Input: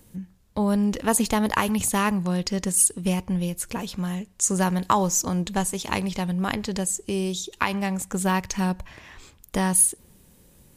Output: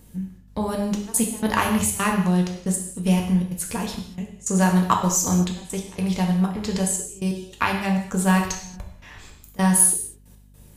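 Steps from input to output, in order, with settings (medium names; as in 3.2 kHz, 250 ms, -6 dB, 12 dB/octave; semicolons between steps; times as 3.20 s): trance gate "xxxx.xxxxx..x..x" 158 bpm -24 dB; gated-style reverb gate 260 ms falling, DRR 0.5 dB; hum 50 Hz, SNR 28 dB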